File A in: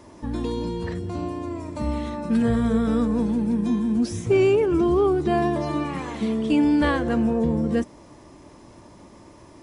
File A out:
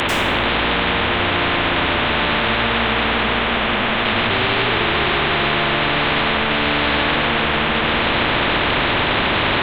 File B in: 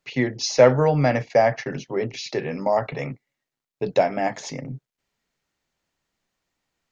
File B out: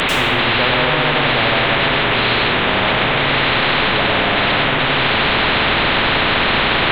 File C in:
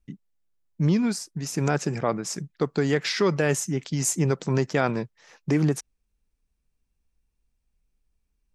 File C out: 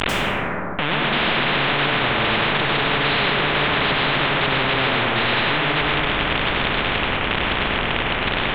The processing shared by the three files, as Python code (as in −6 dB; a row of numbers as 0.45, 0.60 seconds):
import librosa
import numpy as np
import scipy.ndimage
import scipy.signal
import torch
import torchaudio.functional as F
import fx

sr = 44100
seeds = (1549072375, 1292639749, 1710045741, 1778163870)

y = fx.delta_mod(x, sr, bps=16000, step_db=-16.0)
y = fx.rev_plate(y, sr, seeds[0], rt60_s=1.6, hf_ratio=0.4, predelay_ms=85, drr_db=-4.5)
y = fx.spectral_comp(y, sr, ratio=4.0)
y = y * librosa.db_to_amplitude(-4.0)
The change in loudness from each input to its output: +6.0, +8.0, +6.5 LU